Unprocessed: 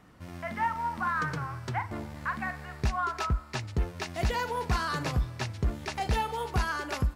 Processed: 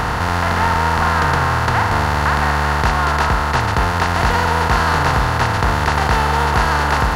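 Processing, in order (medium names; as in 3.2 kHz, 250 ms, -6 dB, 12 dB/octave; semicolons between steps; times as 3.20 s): spectral levelling over time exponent 0.2; trim +5 dB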